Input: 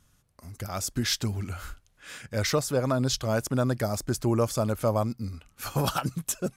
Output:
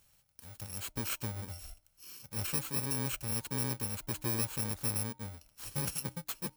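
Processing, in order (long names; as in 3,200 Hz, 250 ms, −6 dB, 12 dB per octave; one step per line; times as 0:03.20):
samples in bit-reversed order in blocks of 64 samples
hum removal 306.1 Hz, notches 3
one half of a high-frequency compander encoder only
level −9 dB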